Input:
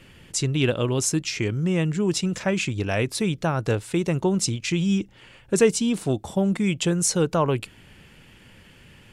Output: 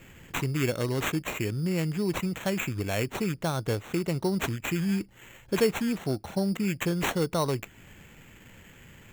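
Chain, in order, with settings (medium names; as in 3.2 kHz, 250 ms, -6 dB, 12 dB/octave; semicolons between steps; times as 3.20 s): in parallel at 0 dB: compression, threshold -34 dBFS, peak gain reduction 20 dB; on the sum: sample-rate reducer 4.9 kHz, jitter 0%; trim -7 dB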